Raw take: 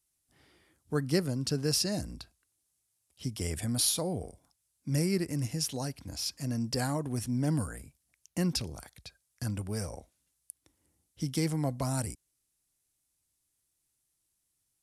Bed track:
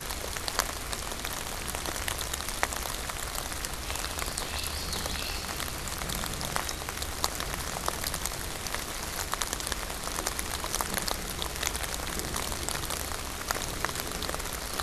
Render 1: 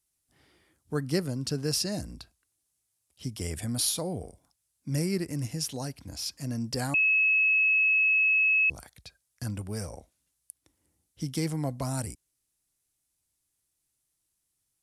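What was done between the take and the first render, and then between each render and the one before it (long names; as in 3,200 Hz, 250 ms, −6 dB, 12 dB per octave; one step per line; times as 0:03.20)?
0:06.94–0:08.70: beep over 2,580 Hz −20 dBFS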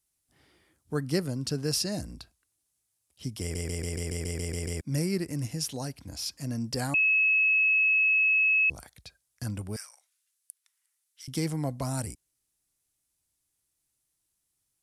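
0:03.41: stutter in place 0.14 s, 10 plays
0:09.76–0:11.28: high-pass filter 1,300 Hz 24 dB per octave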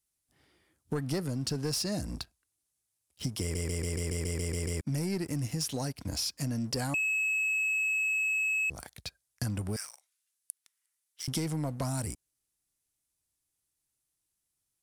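leveller curve on the samples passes 2
downward compressor, threshold −30 dBFS, peak gain reduction 11 dB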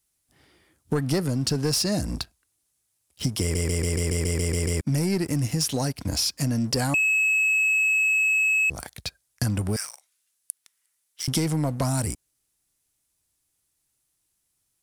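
level +8 dB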